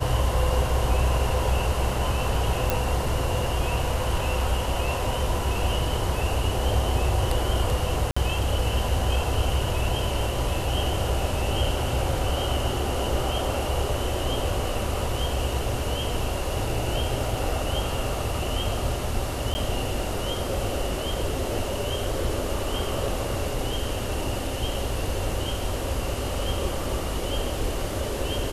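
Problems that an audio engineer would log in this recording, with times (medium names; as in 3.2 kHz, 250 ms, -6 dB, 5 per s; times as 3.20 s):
2.70 s: pop
8.11–8.16 s: dropout 55 ms
19.54–19.55 s: dropout 10 ms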